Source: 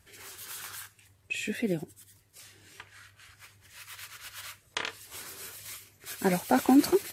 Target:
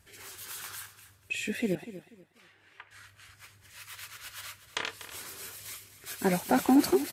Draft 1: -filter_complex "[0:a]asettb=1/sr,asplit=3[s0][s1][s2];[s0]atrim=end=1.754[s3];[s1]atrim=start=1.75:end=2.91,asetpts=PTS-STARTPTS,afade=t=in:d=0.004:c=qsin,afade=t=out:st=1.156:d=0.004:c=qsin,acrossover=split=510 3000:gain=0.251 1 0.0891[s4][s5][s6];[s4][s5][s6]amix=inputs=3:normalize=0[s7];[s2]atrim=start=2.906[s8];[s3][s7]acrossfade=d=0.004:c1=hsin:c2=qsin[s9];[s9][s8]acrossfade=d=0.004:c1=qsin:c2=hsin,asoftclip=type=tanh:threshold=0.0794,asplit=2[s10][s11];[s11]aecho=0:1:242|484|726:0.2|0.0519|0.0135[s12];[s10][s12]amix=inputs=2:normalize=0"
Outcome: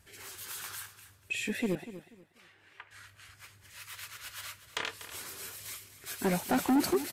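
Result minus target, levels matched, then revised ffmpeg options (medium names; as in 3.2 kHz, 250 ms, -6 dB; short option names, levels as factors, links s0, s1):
saturation: distortion +12 dB
-filter_complex "[0:a]asettb=1/sr,asplit=3[s0][s1][s2];[s0]atrim=end=1.754[s3];[s1]atrim=start=1.75:end=2.91,asetpts=PTS-STARTPTS,afade=t=in:d=0.004:c=qsin,afade=t=out:st=1.156:d=0.004:c=qsin,acrossover=split=510 3000:gain=0.251 1 0.0891[s4][s5][s6];[s4][s5][s6]amix=inputs=3:normalize=0[s7];[s2]atrim=start=2.906[s8];[s3][s7]acrossfade=d=0.004:c1=hsin:c2=qsin[s9];[s9][s8]acrossfade=d=0.004:c1=qsin:c2=hsin,asoftclip=type=tanh:threshold=0.237,asplit=2[s10][s11];[s11]aecho=0:1:242|484|726:0.2|0.0519|0.0135[s12];[s10][s12]amix=inputs=2:normalize=0"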